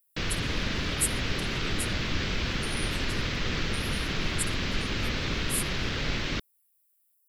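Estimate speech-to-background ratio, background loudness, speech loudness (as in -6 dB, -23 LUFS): -6.0 dB, -30.0 LUFS, -36.0 LUFS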